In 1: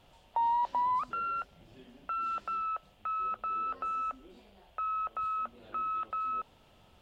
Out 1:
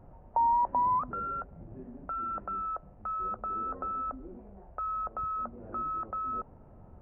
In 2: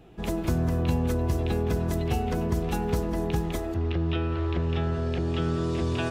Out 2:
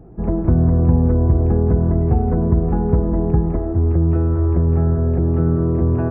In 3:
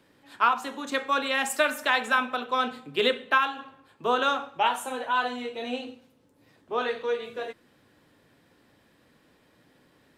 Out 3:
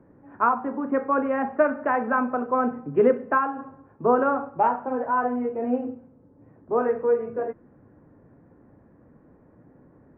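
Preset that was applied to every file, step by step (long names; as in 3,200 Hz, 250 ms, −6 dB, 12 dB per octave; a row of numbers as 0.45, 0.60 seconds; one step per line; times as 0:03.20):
Gaussian smoothing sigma 6.8 samples
low-shelf EQ 300 Hz +6.5 dB
level +6 dB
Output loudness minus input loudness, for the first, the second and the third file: +1.0, +10.5, +2.5 LU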